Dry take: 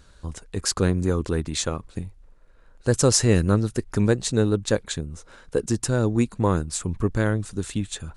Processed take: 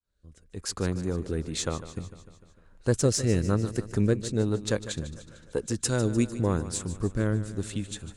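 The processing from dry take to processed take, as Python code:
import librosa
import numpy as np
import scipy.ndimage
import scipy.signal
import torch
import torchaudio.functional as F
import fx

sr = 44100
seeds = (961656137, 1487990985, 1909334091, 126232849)

p1 = fx.fade_in_head(x, sr, length_s=1.2)
p2 = fx.cheby_harmonics(p1, sr, harmonics=(4,), levels_db=(-28,), full_scale_db=-4.5)
p3 = fx.high_shelf(p2, sr, hz=2200.0, db=10.0, at=(5.84, 6.39), fade=0.02)
p4 = fx.rotary(p3, sr, hz=1.0)
p5 = p4 + fx.echo_feedback(p4, sr, ms=150, feedback_pct=59, wet_db=-14, dry=0)
y = p5 * 10.0 ** (-3.5 / 20.0)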